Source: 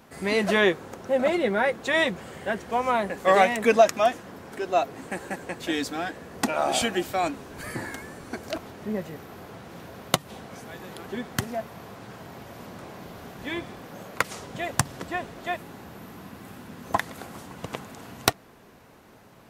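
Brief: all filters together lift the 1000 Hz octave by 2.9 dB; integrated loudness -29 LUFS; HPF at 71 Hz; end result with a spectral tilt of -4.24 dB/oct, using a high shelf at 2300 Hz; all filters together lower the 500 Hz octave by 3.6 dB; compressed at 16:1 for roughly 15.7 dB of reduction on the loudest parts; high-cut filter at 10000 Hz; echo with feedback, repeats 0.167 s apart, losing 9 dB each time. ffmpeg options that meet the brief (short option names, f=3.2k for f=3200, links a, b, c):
-af "highpass=71,lowpass=10k,equalizer=f=500:t=o:g=-8.5,equalizer=f=1k:t=o:g=8.5,highshelf=f=2.3k:g=-3.5,acompressor=threshold=-29dB:ratio=16,aecho=1:1:167|334|501|668:0.355|0.124|0.0435|0.0152,volume=7dB"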